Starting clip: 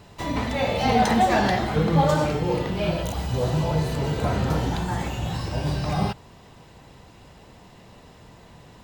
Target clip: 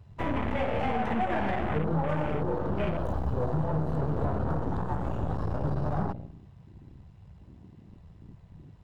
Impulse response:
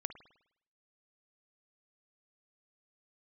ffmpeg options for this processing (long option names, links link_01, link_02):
-filter_complex "[0:a]highpass=frequency=46:width=0.5412,highpass=frequency=46:width=1.3066,lowshelf=frequency=62:gain=8,asplit=2[link_01][link_02];[1:a]atrim=start_sample=2205[link_03];[link_02][link_03]afir=irnorm=-1:irlink=0,volume=4.5dB[link_04];[link_01][link_04]amix=inputs=2:normalize=0,acompressor=threshold=-18dB:ratio=6,aeval=exprs='0.299*(cos(1*acos(clip(val(0)/0.299,-1,1)))-cos(1*PI/2))+0.0473*(cos(8*acos(clip(val(0)/0.299,-1,1)))-cos(8*PI/2))':channel_layout=same,highshelf=frequency=3600:gain=-8.5,bandreject=frequency=60:width_type=h:width=6,bandreject=frequency=120:width_type=h:width=6,bandreject=frequency=180:width_type=h:width=6,bandreject=frequency=240:width_type=h:width=6,afwtdn=0.0316,volume=-7.5dB"